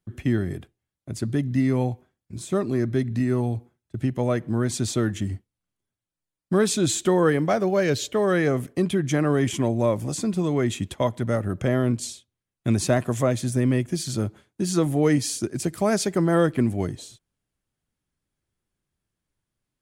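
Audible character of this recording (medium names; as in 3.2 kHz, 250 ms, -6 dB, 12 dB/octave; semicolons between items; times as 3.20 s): noise floor -87 dBFS; spectral tilt -6.0 dB/octave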